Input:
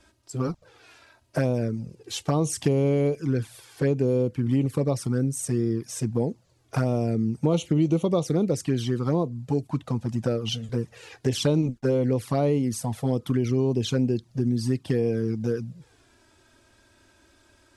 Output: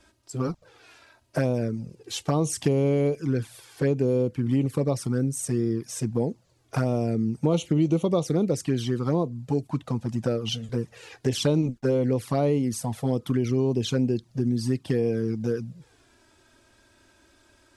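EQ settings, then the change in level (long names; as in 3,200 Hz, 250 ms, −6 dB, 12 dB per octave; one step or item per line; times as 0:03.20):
parametric band 85 Hz −2.5 dB 1 octave
0.0 dB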